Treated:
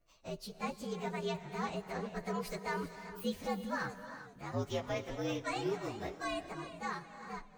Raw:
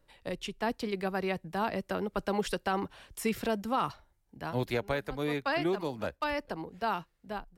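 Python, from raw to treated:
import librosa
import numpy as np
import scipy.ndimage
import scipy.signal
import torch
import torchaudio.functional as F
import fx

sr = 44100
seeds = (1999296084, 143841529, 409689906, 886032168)

y = fx.partial_stretch(x, sr, pct=117)
y = fx.rev_gated(y, sr, seeds[0], gate_ms=390, shape='rising', drr_db=11.0)
y = fx.echo_warbled(y, sr, ms=395, feedback_pct=36, rate_hz=2.8, cents=97, wet_db=-14.5)
y = y * 10.0 ** (-3.5 / 20.0)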